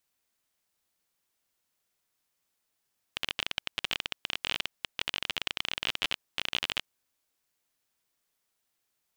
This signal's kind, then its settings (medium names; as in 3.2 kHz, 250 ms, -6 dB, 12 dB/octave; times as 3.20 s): random clicks 27 per s -12 dBFS 3.67 s